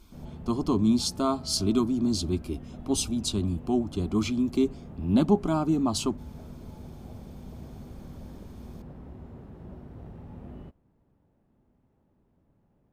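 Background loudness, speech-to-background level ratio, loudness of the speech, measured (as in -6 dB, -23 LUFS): -44.0 LUFS, 17.0 dB, -27.0 LUFS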